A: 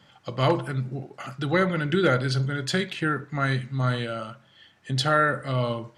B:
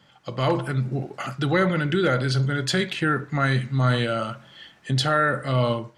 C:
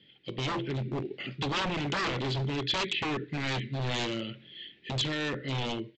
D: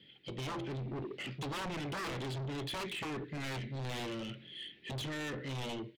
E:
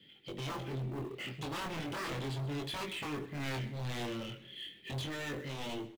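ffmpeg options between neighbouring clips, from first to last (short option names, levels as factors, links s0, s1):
-filter_complex "[0:a]bandreject=f=50:t=h:w=6,bandreject=f=100:t=h:w=6,asplit=2[s0][s1];[s1]alimiter=limit=0.119:level=0:latency=1:release=18,volume=1.41[s2];[s0][s2]amix=inputs=2:normalize=0,dynaudnorm=f=130:g=5:m=3.76,volume=0.376"
-af "firequalizer=gain_entry='entry(110,0);entry(380,11);entry(660,-12);entry(1200,-19);entry(1900,2);entry(3500,4);entry(6300,-21)':delay=0.05:min_phase=1,aresample=16000,aeval=exprs='0.119*(abs(mod(val(0)/0.119+3,4)-2)-1)':c=same,aresample=44100,equalizer=f=3300:t=o:w=1.7:g=6.5,volume=0.376"
-filter_complex "[0:a]acrossover=split=2400[s0][s1];[s1]alimiter=level_in=2:limit=0.0631:level=0:latency=1:release=293,volume=0.501[s2];[s0][s2]amix=inputs=2:normalize=0,asoftclip=type=tanh:threshold=0.0141"
-filter_complex "[0:a]flanger=delay=20:depth=5.7:speed=0.35,acrossover=split=590|2400[s0][s1][s2];[s1]acrusher=bits=3:mode=log:mix=0:aa=0.000001[s3];[s0][s3][s2]amix=inputs=3:normalize=0,aecho=1:1:130|260|390:0.119|0.038|0.0122,volume=1.41"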